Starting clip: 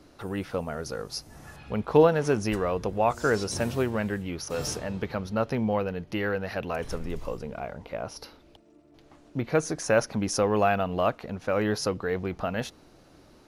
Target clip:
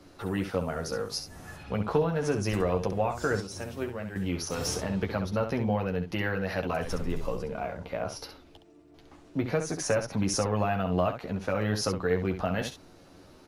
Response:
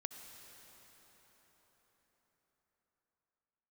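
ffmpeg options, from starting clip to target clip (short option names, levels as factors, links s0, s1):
-filter_complex "[0:a]asettb=1/sr,asplit=3[s0][s1][s2];[s0]atrim=end=3.404[s3];[s1]atrim=start=3.4:end=4.16,asetpts=PTS-STARTPTS,afade=t=in:d=0.004:c=qsin,afade=t=out:st=0.756:d=0.004:c=qsin,agate=range=0.316:threshold=0.0794:ratio=16:detection=peak[s4];[s2]atrim=start=4.156[s5];[s3][s4]acrossfade=d=0.004:c1=hsin:c2=qsin[s6];[s6][s5]acrossfade=d=0.004:c1=qsin:c2=hsin,acrossover=split=170[s7][s8];[s8]acompressor=threshold=0.0501:ratio=6[s9];[s7][s9]amix=inputs=2:normalize=0,aecho=1:1:11|67:0.562|0.398"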